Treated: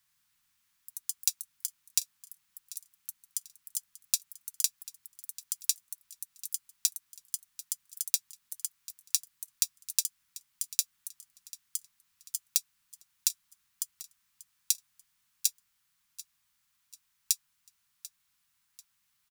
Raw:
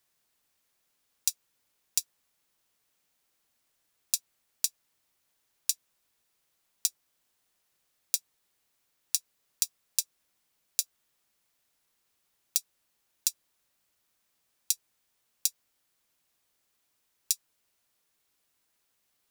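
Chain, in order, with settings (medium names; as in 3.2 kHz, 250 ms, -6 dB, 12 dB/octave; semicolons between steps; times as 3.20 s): Chebyshev band-stop 180–1100 Hz, order 2; feedback delay 741 ms, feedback 40%, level -18 dB; ever faster or slower copies 82 ms, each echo +4 st, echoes 3, each echo -6 dB; trim +1.5 dB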